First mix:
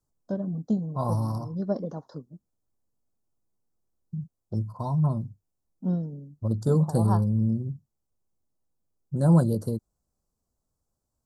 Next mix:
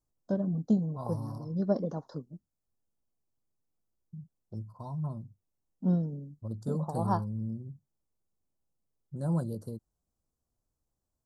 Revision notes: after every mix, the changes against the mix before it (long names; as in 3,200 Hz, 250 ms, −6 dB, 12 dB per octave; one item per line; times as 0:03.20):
second voice −11.0 dB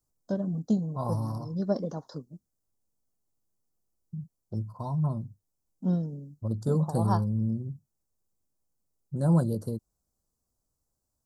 first voice: add high-shelf EQ 3,100 Hz +10 dB
second voice +7.0 dB